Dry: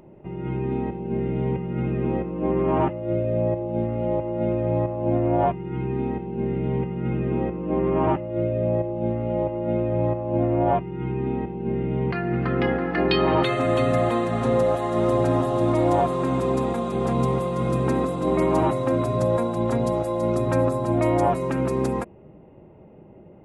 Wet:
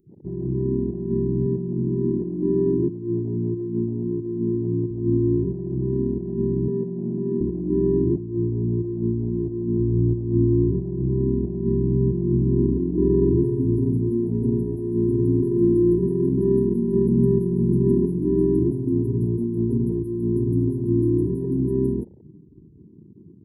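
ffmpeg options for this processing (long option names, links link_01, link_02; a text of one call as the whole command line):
ffmpeg -i in.wav -filter_complex "[0:a]asettb=1/sr,asplit=3[link_01][link_02][link_03];[link_01]atrim=end=1.464[link_04];[link_02]atrim=start=1.46:end=4.91,asetpts=PTS-STARTPTS,afade=type=in:duration=0.004:curve=qsin,afade=type=out:start_time=3.446:duration=0.004:curve=qsin,highpass=120,lowpass=3700[link_05];[link_03]atrim=start=4.906[link_06];[link_04][link_05]acrossfade=duration=0.004:curve1=hsin:curve2=qsin[link_07];[link_07][link_06]acrossfade=duration=0.004:curve1=qsin:curve2=hsin,asettb=1/sr,asplit=3[link_08][link_09][link_10];[link_08]atrim=end=6.684[link_11];[link_09]atrim=start=6.68:end=7.41,asetpts=PTS-STARTPTS,afade=type=in:duration=0.004:curve=qsin,afade=type=out:start_time=0.726:duration=0.004:curve=qsin,highpass=frequency=170:width=0.5412,highpass=frequency=170:width=1.3066,equalizer=frequency=320:width_type=q:width=4:gain=-6,equalizer=frequency=460:width_type=q:width=4:gain=5,equalizer=frequency=920:width_type=q:width=4:gain=-4,equalizer=frequency=1300:width_type=q:width=4:gain=-7,equalizer=frequency=2200:width_type=q:width=4:gain=-10,lowpass=frequency=2600:width=0.5412,lowpass=frequency=2600:width=1.3066[link_12];[link_10]atrim=start=7.406[link_13];[link_11][link_12]acrossfade=duration=0.004:curve1=hsin:curve2=qsin[link_14];[link_14][link_13]acrossfade=duration=0.004:curve1=qsin:curve2=hsin,asettb=1/sr,asplit=3[link_15][link_16][link_17];[link_15]atrim=end=9.794[link_18];[link_16]atrim=start=9.79:end=13.8,asetpts=PTS-STARTPTS,afade=type=in:duration=0.004:curve=qsin,afade=type=out:start_time=4.006:duration=0.004:curve=qsin,lowshelf=frequency=75:gain=10[link_19];[link_17]atrim=start=13.796[link_20];[link_18][link_19]acrossfade=duration=0.004:curve1=hsin:curve2=qsin[link_21];[link_21][link_20]acrossfade=duration=0.004:curve1=qsin:curve2=hsin,asettb=1/sr,asplit=3[link_22][link_23][link_24];[link_22]atrim=end=15.424[link_25];[link_23]atrim=start=15.42:end=18.2,asetpts=PTS-STARTPTS,afade=type=in:duration=0.004:curve=qsin,afade=type=out:start_time=2.776:duration=0.004:curve=qsin,aecho=1:1:5.2:0.81,atrim=end_sample=122598[link_26];[link_24]atrim=start=18.196[link_27];[link_25][link_26]acrossfade=duration=0.004:curve1=hsin:curve2=qsin[link_28];[link_28][link_27]acrossfade=duration=0.004:curve1=qsin:curve2=hsin,asettb=1/sr,asplit=3[link_29][link_30][link_31];[link_29]atrim=end=19.914[link_32];[link_30]atrim=start=19.91:end=21.45,asetpts=PTS-STARTPTS,afade=type=in:duration=0.004:curve=qsin,afade=type=out:start_time=1.536:duration=0.004:curve=qsin,asuperstop=centerf=850:order=20:qfactor=2.2[link_33];[link_31]atrim=start=21.446[link_34];[link_32][link_33]acrossfade=duration=0.004:curve1=hsin:curve2=qsin[link_35];[link_35][link_34]acrossfade=duration=0.004:curve1=qsin:curve2=hsin,afftfilt=real='re*(1-between(b*sr/4096,460,9300))':imag='im*(1-between(b*sr/4096,460,9300))':win_size=4096:overlap=0.75,afwtdn=0.0141,highshelf=frequency=8700:gain=6,volume=3dB" out.wav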